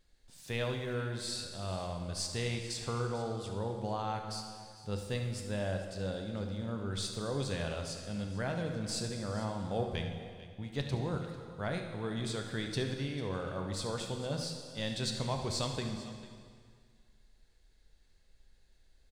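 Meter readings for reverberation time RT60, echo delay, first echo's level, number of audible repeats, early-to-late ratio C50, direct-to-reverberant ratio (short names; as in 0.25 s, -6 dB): 2.0 s, 73 ms, -12.5 dB, 2, 4.5 dB, 3.0 dB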